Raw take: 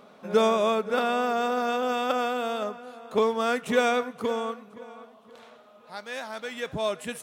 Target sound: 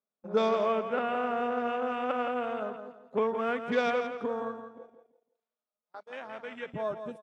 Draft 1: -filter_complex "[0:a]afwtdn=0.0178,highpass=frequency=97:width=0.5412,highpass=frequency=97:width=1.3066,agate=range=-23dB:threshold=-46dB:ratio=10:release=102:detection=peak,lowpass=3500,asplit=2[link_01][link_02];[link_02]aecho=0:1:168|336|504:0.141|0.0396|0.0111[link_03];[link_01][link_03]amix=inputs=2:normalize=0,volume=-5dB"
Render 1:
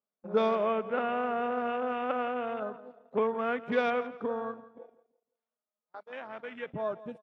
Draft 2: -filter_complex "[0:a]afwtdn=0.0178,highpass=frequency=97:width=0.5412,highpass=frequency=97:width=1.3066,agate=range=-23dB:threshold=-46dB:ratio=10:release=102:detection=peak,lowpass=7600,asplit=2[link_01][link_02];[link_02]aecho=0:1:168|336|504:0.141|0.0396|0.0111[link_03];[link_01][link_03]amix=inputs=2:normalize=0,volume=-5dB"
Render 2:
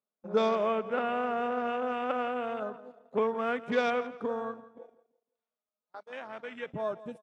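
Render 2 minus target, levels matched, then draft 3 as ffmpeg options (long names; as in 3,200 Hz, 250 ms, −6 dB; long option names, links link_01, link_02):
echo-to-direct −8 dB
-filter_complex "[0:a]afwtdn=0.0178,highpass=frequency=97:width=0.5412,highpass=frequency=97:width=1.3066,agate=range=-23dB:threshold=-46dB:ratio=10:release=102:detection=peak,lowpass=7600,asplit=2[link_01][link_02];[link_02]aecho=0:1:168|336|504:0.355|0.0993|0.0278[link_03];[link_01][link_03]amix=inputs=2:normalize=0,volume=-5dB"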